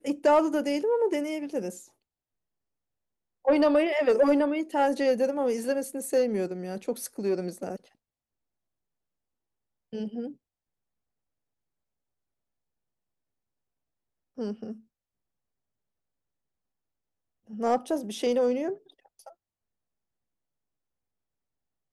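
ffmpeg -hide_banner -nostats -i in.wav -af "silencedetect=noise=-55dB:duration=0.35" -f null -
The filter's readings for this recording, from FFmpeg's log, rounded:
silence_start: 1.90
silence_end: 3.45 | silence_duration: 1.54
silence_start: 7.92
silence_end: 9.93 | silence_duration: 2.01
silence_start: 10.36
silence_end: 14.37 | silence_duration: 4.01
silence_start: 14.82
silence_end: 17.47 | silence_duration: 2.66
silence_start: 19.33
silence_end: 21.93 | silence_duration: 2.60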